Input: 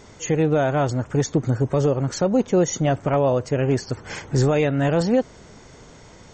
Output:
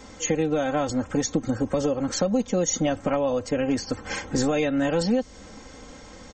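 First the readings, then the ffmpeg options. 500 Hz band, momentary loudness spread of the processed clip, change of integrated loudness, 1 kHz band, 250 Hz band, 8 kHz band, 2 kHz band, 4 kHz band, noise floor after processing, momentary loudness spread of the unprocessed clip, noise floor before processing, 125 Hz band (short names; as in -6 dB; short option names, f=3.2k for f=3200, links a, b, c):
-4.5 dB, 21 LU, -3.5 dB, -4.0 dB, -2.0 dB, +2.5 dB, -2.0 dB, +1.5 dB, -45 dBFS, 6 LU, -46 dBFS, -11.0 dB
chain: -filter_complex "[0:a]aecho=1:1:3.8:0.8,acrossover=split=130|3000[a][b][c];[b]acompressor=threshold=-21dB:ratio=6[d];[a][d][c]amix=inputs=3:normalize=0"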